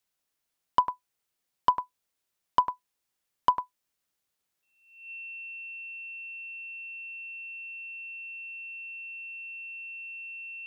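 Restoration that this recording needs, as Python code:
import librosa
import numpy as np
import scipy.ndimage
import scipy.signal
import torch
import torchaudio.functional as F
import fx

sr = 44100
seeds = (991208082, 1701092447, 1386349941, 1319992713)

y = fx.fix_declip(x, sr, threshold_db=-12.0)
y = fx.notch(y, sr, hz=2700.0, q=30.0)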